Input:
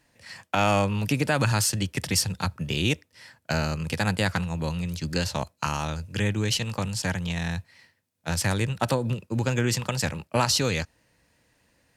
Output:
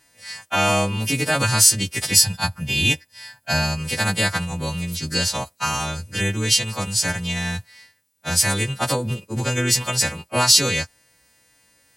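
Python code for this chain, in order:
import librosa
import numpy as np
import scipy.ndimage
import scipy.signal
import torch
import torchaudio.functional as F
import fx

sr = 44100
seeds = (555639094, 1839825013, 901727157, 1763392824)

y = fx.freq_snap(x, sr, grid_st=2)
y = fx.comb(y, sr, ms=1.2, depth=0.48, at=(2.13, 3.79))
y = fx.vibrato(y, sr, rate_hz=1.4, depth_cents=5.5)
y = F.gain(torch.from_numpy(y), 2.0).numpy()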